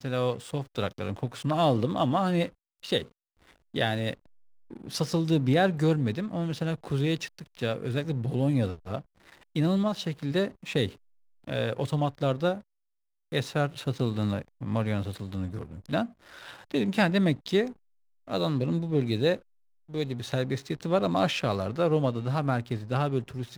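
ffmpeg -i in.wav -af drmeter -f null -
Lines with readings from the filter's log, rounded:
Channel 1: DR: 14.1
Overall DR: 14.1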